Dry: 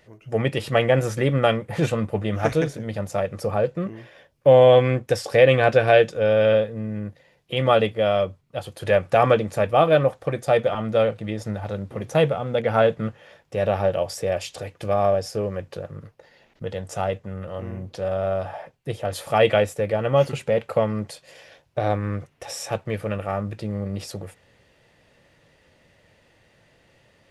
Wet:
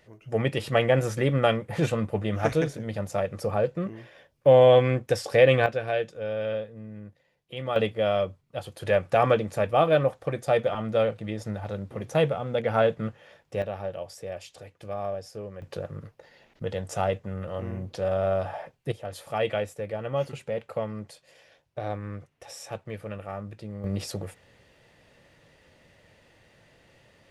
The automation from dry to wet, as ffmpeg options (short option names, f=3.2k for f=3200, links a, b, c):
-af "asetnsamples=n=441:p=0,asendcmd='5.66 volume volume -12dB;7.76 volume volume -4dB;13.62 volume volume -12dB;15.62 volume volume -1dB;18.92 volume volume -9.5dB;23.84 volume volume 0dB',volume=-3dB"